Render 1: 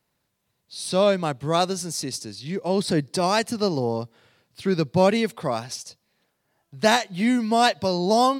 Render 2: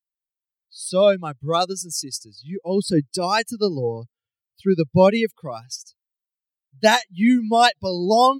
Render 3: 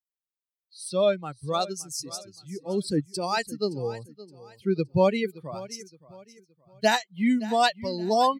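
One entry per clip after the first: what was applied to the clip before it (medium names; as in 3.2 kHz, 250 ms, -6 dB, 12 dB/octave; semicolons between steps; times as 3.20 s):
expander on every frequency bin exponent 2; trim +6.5 dB
feedback delay 569 ms, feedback 34%, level -18 dB; trim -6.5 dB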